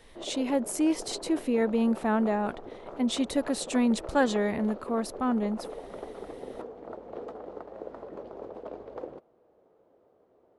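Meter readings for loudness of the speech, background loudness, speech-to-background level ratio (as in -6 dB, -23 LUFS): -28.5 LUFS, -42.0 LUFS, 13.5 dB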